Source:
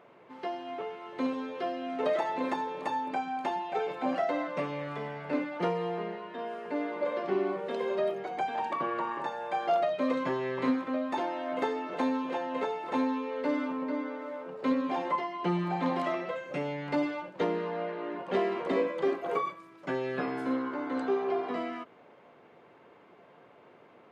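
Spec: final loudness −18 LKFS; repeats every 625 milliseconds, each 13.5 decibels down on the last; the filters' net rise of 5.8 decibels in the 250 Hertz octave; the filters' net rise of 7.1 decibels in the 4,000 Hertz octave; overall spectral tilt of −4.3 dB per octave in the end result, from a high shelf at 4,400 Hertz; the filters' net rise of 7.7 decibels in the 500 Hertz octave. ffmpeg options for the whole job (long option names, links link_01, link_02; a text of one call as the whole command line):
ffmpeg -i in.wav -af "equalizer=frequency=250:width_type=o:gain=4,equalizer=frequency=500:width_type=o:gain=8.5,equalizer=frequency=4000:width_type=o:gain=6.5,highshelf=frequency=4400:gain=5.5,aecho=1:1:625|1250:0.211|0.0444,volume=8dB" out.wav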